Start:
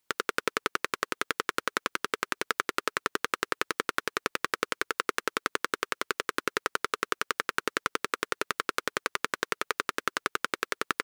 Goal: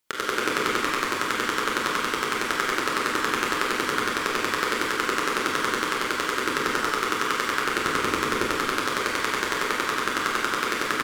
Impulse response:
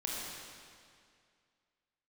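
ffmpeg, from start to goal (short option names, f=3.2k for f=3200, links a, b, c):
-filter_complex "[0:a]asettb=1/sr,asplit=3[a][b][c];[a]atrim=end=7.844[d];[b]atrim=start=7.84:end=8.48,asetpts=PTS-STARTPTS,afade=t=in:d=0.004:c=qsin,afade=t=out:st=0.636:d=0.004:c=qsin,lowshelf=f=240:g=11[e];[c]atrim=start=8.476[f];[d][e]acrossfade=d=0.004:c1=hsin:c2=qsin[g];[g][f]acrossfade=d=0.004:c1=qsin:c2=hsin,asplit=8[h][i][j][k][l][m][n][o];[i]adelay=101,afreqshift=-68,volume=-3.5dB[p];[j]adelay=202,afreqshift=-136,volume=-9.3dB[q];[k]adelay=303,afreqshift=-204,volume=-15.2dB[r];[l]adelay=404,afreqshift=-272,volume=-21dB[s];[m]adelay=505,afreqshift=-340,volume=-26.9dB[t];[n]adelay=606,afreqshift=-408,volume=-32.7dB[u];[o]adelay=707,afreqshift=-476,volume=-38.6dB[v];[h][p][q][r][s][t][u][v]amix=inputs=8:normalize=0[w];[1:a]atrim=start_sample=2205,afade=t=out:st=0.28:d=0.01,atrim=end_sample=12789[x];[w][x]afir=irnorm=-1:irlink=0,volume=2dB"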